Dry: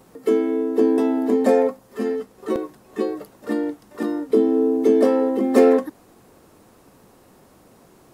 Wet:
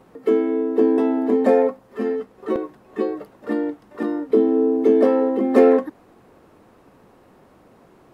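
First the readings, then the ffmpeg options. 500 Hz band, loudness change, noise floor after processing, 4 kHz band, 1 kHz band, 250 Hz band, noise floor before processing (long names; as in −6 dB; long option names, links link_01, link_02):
+1.0 dB, +0.5 dB, −53 dBFS, can't be measured, +1.0 dB, 0.0 dB, −53 dBFS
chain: -af "bass=frequency=250:gain=-2,treble=frequency=4000:gain=-13,volume=1dB"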